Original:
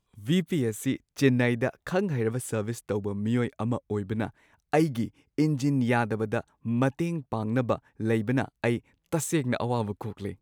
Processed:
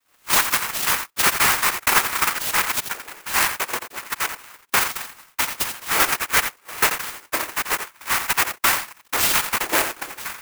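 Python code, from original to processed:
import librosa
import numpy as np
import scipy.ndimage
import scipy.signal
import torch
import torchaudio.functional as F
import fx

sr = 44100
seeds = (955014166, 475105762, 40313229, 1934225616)

p1 = scipy.signal.sosfilt(scipy.signal.butter(6, 1100.0, 'highpass', fs=sr, output='sos'), x)
p2 = fx.high_shelf(p1, sr, hz=5100.0, db=-3.5)
p3 = p2 + 0.87 * np.pad(p2, (int(4.8 * sr / 1000.0), 0))[:len(p2)]
p4 = fx.level_steps(p3, sr, step_db=21)
p5 = p3 + (p4 * 10.0 ** (-1.5 / 20.0))
p6 = fx.noise_vocoder(p5, sr, seeds[0], bands=4)
p7 = fx.fold_sine(p6, sr, drive_db=14, ceiling_db=-9.0)
p8 = fx.tremolo_random(p7, sr, seeds[1], hz=3.5, depth_pct=55)
p9 = p8 + fx.echo_single(p8, sr, ms=86, db=-9.0, dry=0)
y = fx.clock_jitter(p9, sr, seeds[2], jitter_ms=0.067)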